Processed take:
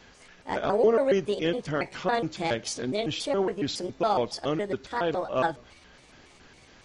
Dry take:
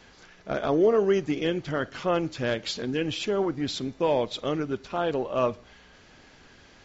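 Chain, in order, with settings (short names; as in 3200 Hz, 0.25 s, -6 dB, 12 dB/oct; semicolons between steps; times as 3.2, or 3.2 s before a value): trilling pitch shifter +5.5 st, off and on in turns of 0.139 s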